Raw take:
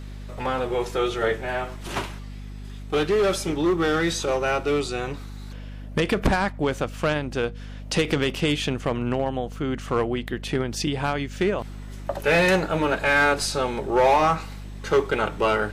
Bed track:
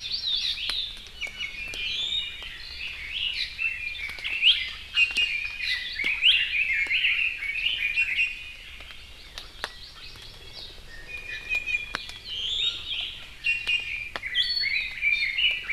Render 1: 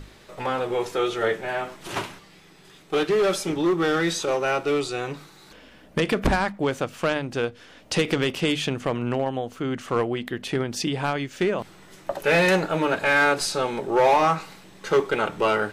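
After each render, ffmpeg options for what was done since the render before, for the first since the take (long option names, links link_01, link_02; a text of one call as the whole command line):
ffmpeg -i in.wav -af "bandreject=frequency=50:width_type=h:width=6,bandreject=frequency=100:width_type=h:width=6,bandreject=frequency=150:width_type=h:width=6,bandreject=frequency=200:width_type=h:width=6,bandreject=frequency=250:width_type=h:width=6" out.wav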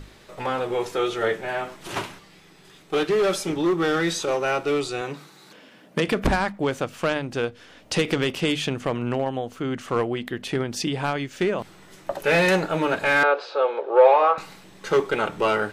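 ffmpeg -i in.wav -filter_complex "[0:a]asettb=1/sr,asplit=3[link_01][link_02][link_03];[link_01]atrim=end=5.014[link_04];[link_02]atrim=start=5.01:end=6.08,asetpts=PTS-STARTPTS,afade=type=in:duration=0.004:curve=qsin,afade=type=out:start_time=1.066:duration=0.004:curve=qsin,highpass=frequency=130:width=0.5412,highpass=frequency=130:width=1.3066[link_05];[link_03]atrim=start=6.076[link_06];[link_04][link_05]acrossfade=duration=0.004:curve1=hsin:curve2=qsin[link_07];[link_07][link_06]acrossfade=duration=0.004:curve1=qsin:curve2=hsin,asettb=1/sr,asplit=3[link_08][link_09][link_10];[link_08]atrim=end=13.234[link_11];[link_09]atrim=start=13.23:end=14.38,asetpts=PTS-STARTPTS,afade=type=in:duration=0.004:curve=qsin,afade=type=out:start_time=1.146:duration=0.004:curve=qsin,highpass=frequency=430:width=0.5412,highpass=frequency=430:width=1.3066,equalizer=frequency=500:width_type=q:width=4:gain=9,equalizer=frequency=1200:width_type=q:width=4:gain=3,equalizer=frequency=2000:width_type=q:width=4:gain=-8,equalizer=frequency=3000:width_type=q:width=4:gain=-3,lowpass=frequency=3300:width=0.5412,lowpass=frequency=3300:width=1.3066[link_12];[link_10]atrim=start=14.376[link_13];[link_11][link_12]acrossfade=duration=0.004:curve1=hsin:curve2=qsin[link_14];[link_14][link_13]acrossfade=duration=0.004:curve1=qsin:curve2=hsin" out.wav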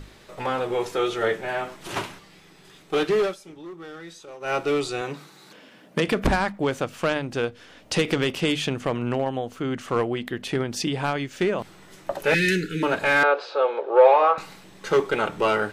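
ffmpeg -i in.wav -filter_complex "[0:a]asettb=1/sr,asplit=3[link_01][link_02][link_03];[link_01]atrim=end=12.344[link_04];[link_02]atrim=start=12.34:end=12.83,asetpts=PTS-STARTPTS,afade=type=in:duration=0.004:curve=qsin,afade=type=out:start_time=0.486:duration=0.004:curve=qsin,asuperstop=centerf=820:order=12:qfactor=0.75[link_05];[link_03]atrim=start=12.826[link_06];[link_04][link_05]acrossfade=duration=0.004:curve1=hsin:curve2=qsin[link_07];[link_07][link_06]acrossfade=duration=0.004:curve1=qsin:curve2=hsin,asplit=3[link_08][link_09][link_10];[link_08]atrim=end=3.35,asetpts=PTS-STARTPTS,afade=type=out:start_time=3.2:duration=0.15:silence=0.133352[link_11];[link_09]atrim=start=3.35:end=4.4,asetpts=PTS-STARTPTS,volume=-17.5dB[link_12];[link_10]atrim=start=4.4,asetpts=PTS-STARTPTS,afade=type=in:duration=0.15:silence=0.133352[link_13];[link_11][link_12][link_13]concat=n=3:v=0:a=1" out.wav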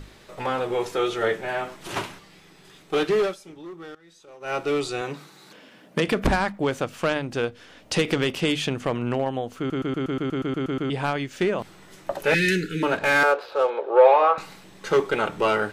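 ffmpeg -i in.wav -filter_complex "[0:a]asettb=1/sr,asplit=3[link_01][link_02][link_03];[link_01]atrim=end=12.974[link_04];[link_02]atrim=start=12.97:end=13.7,asetpts=PTS-STARTPTS,afade=type=in:duration=0.004:curve=qsin,afade=type=out:start_time=0.726:duration=0.004:curve=qsin,adynamicsmooth=sensitivity=7:basefreq=2200[link_05];[link_03]atrim=start=13.696[link_06];[link_04][link_05]acrossfade=duration=0.004:curve1=hsin:curve2=qsin[link_07];[link_07][link_06]acrossfade=duration=0.004:curve1=qsin:curve2=hsin,asplit=13[link_08][link_09][link_10][link_11][link_12][link_13][link_14][link_15][link_16][link_17][link_18][link_19][link_20];[link_08]atrim=end=3.95,asetpts=PTS-STARTPTS,afade=type=out:start_time=3.946:duration=0.004:curve=hsin:silence=0.1[link_21];[link_09]atrim=start=3.95:end=9.702,asetpts=PTS-STARTPTS,afade=type=in:duration=1.12:curve=qsin:silence=0.1[link_22];[link_10]atrim=start=9.578:end=9.702[link_23];[link_11]atrim=start=9.578:end=9.702[link_24];[link_12]atrim=start=9.578:end=9.702[link_25];[link_13]atrim=start=9.578:end=9.702[link_26];[link_14]atrim=start=9.578:end=9.702[link_27];[link_15]atrim=start=9.578:end=9.702[link_28];[link_16]atrim=start=9.578:end=9.702[link_29];[link_17]atrim=start=9.578:end=9.702[link_30];[link_18]atrim=start=9.578:end=9.702[link_31];[link_19]atrim=start=9.578:end=9.702[link_32];[link_20]atrim=start=10.898[link_33];[link_21][link_22]concat=n=2:v=0:a=1[link_34];[link_34][link_23]acrossfade=duration=0.004:curve1=hsin:curve2=hsin[link_35];[link_35][link_24]acrossfade=duration=0.004:curve1=hsin:curve2=hsin[link_36];[link_36][link_25]acrossfade=duration=0.004:curve1=hsin:curve2=hsin[link_37];[link_37][link_26]acrossfade=duration=0.004:curve1=hsin:curve2=hsin[link_38];[link_38][link_27]acrossfade=duration=0.004:curve1=hsin:curve2=hsin[link_39];[link_39][link_28]acrossfade=duration=0.004:curve1=hsin:curve2=hsin[link_40];[link_40][link_29]acrossfade=duration=0.004:curve1=hsin:curve2=hsin[link_41];[link_41][link_30]acrossfade=duration=0.004:curve1=hsin:curve2=hsin[link_42];[link_42][link_31]acrossfade=duration=0.004:curve1=hsin:curve2=hsin[link_43];[link_43][link_32]acrossfade=duration=0.004:curve1=hsin:curve2=hsin[link_44];[link_44][link_33]acrossfade=duration=0.004:curve1=hsin:curve2=hsin" out.wav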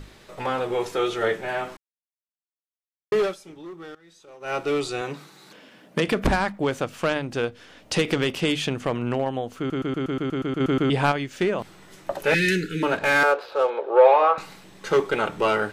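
ffmpeg -i in.wav -filter_complex "[0:a]asettb=1/sr,asplit=3[link_01][link_02][link_03];[link_01]atrim=end=10.604[link_04];[link_02]atrim=start=10.6:end=11.12,asetpts=PTS-STARTPTS,afade=type=in:duration=0.004:curve=qsin,afade=type=out:start_time=0.516:duration=0.004:curve=qsin,acontrast=31[link_05];[link_03]atrim=start=11.116[link_06];[link_04][link_05]acrossfade=duration=0.004:curve1=hsin:curve2=qsin[link_07];[link_07][link_06]acrossfade=duration=0.004:curve1=qsin:curve2=hsin,asplit=3[link_08][link_09][link_10];[link_08]atrim=end=1.77,asetpts=PTS-STARTPTS,afade=type=out:start_time=1.766:duration=0.004:curve=hsin[link_11];[link_09]atrim=start=1.77:end=3.12,asetpts=PTS-STARTPTS,volume=0[link_12];[link_10]atrim=start=3.12,asetpts=PTS-STARTPTS,afade=type=in:duration=0.004:curve=hsin[link_13];[link_11][link_12][link_13]concat=n=3:v=0:a=1" out.wav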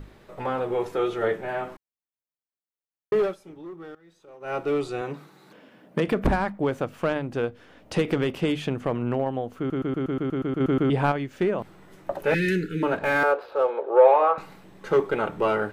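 ffmpeg -i in.wav -af "equalizer=frequency=6200:width=0.36:gain=-12" out.wav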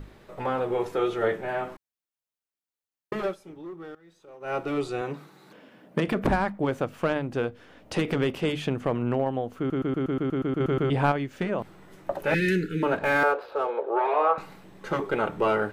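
ffmpeg -i in.wav -af "afftfilt=real='re*lt(hypot(re,im),0.794)':imag='im*lt(hypot(re,im),0.794)':win_size=1024:overlap=0.75" out.wav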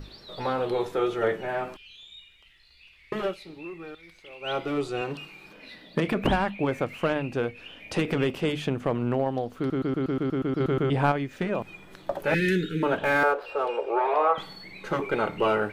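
ffmpeg -i in.wav -i bed.wav -filter_complex "[1:a]volume=-19.5dB[link_01];[0:a][link_01]amix=inputs=2:normalize=0" out.wav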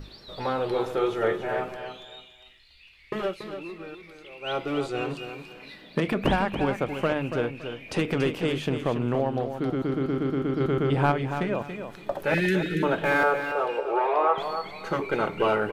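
ffmpeg -i in.wav -af "aecho=1:1:283|566|849:0.376|0.0977|0.0254" out.wav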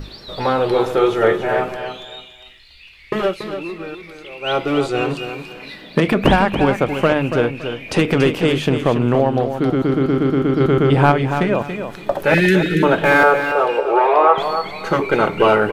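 ffmpeg -i in.wav -af "volume=10dB,alimiter=limit=-1dB:level=0:latency=1" out.wav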